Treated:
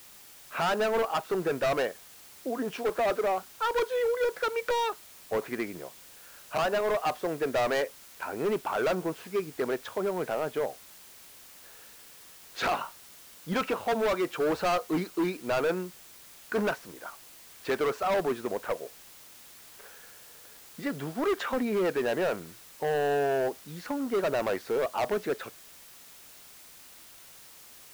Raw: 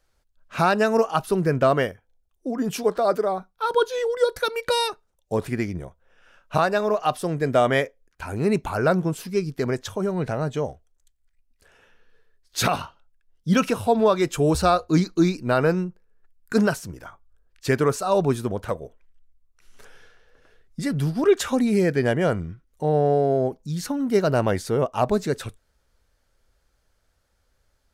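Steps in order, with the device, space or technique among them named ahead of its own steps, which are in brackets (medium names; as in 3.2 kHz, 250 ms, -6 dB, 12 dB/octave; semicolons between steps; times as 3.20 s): aircraft radio (band-pass 390–2300 Hz; hard clipper -23.5 dBFS, distortion -6 dB; white noise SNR 20 dB)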